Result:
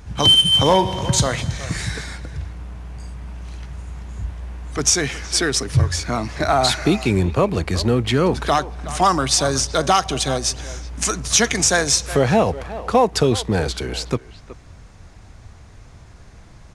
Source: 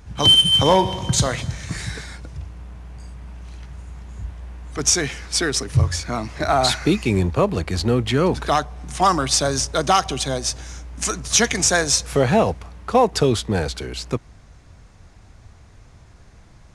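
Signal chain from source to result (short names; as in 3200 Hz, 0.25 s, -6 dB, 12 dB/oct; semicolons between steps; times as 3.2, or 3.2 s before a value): speakerphone echo 0.37 s, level -16 dB; in parallel at -1.5 dB: compressor, threshold -23 dBFS, peak gain reduction 13 dB; on the sum: gain -1.5 dB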